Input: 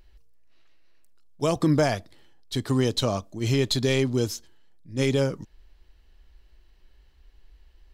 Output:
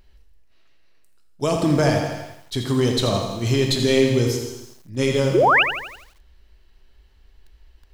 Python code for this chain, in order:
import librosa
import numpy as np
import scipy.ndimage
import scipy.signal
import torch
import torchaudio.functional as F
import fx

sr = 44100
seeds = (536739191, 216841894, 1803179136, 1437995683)

y = fx.rev_gated(x, sr, seeds[0], gate_ms=420, shape='falling', drr_db=3.5)
y = fx.spec_paint(y, sr, seeds[1], shape='rise', start_s=5.34, length_s=0.29, low_hz=310.0, high_hz=3100.0, level_db=-17.0)
y = fx.echo_crushed(y, sr, ms=83, feedback_pct=55, bits=8, wet_db=-8.5)
y = y * librosa.db_to_amplitude(2.0)